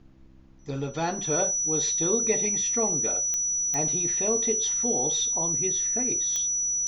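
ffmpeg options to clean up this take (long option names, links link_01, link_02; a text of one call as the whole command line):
ffmpeg -i in.wav -af "adeclick=threshold=4,bandreject=frequency=65.6:width_type=h:width=4,bandreject=frequency=131.2:width_type=h:width=4,bandreject=frequency=196.8:width_type=h:width=4,bandreject=frequency=262.4:width_type=h:width=4,bandreject=frequency=328:width_type=h:width=4,bandreject=frequency=5900:width=30,agate=range=-21dB:threshold=-35dB" out.wav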